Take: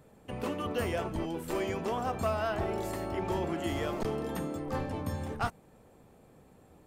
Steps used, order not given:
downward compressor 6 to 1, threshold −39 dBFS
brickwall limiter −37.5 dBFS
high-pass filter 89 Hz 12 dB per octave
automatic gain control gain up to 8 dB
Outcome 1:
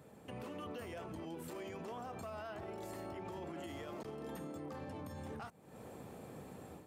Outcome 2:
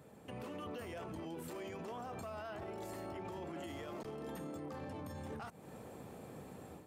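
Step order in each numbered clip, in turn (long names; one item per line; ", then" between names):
automatic gain control, then downward compressor, then brickwall limiter, then high-pass filter
downward compressor, then automatic gain control, then brickwall limiter, then high-pass filter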